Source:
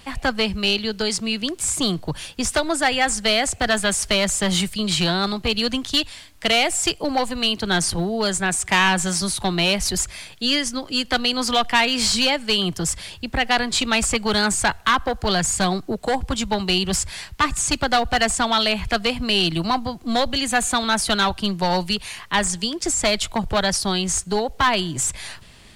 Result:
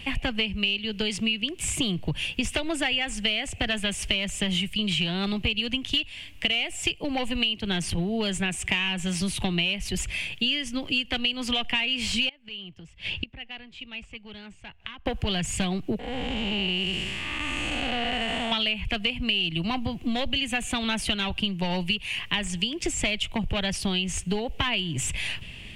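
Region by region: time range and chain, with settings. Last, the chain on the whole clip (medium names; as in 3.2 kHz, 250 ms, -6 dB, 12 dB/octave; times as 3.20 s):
12.29–15.06 s: low-pass 4.7 kHz + inverted gate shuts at -22 dBFS, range -25 dB
15.99–18.52 s: spectral blur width 365 ms + tone controls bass -6 dB, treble -8 dB
whole clip: FFT filter 150 Hz 0 dB, 1.4 kHz -12 dB, 2.8 kHz +8 dB, 4.1 kHz -11 dB; compression 6:1, threshold -30 dBFS; trim +6 dB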